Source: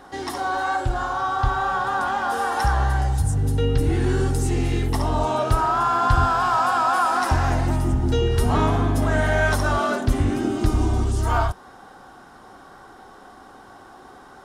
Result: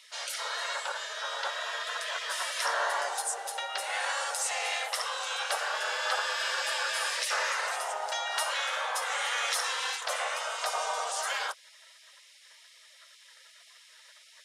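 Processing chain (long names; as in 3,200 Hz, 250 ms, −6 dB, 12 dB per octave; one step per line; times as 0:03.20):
low-pass filter 10,000 Hz 12 dB per octave
gate on every frequency bin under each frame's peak −20 dB weak
Butterworth high-pass 520 Hz 48 dB per octave
in parallel at −2 dB: brickwall limiter −26.5 dBFS, peak gain reduction 8 dB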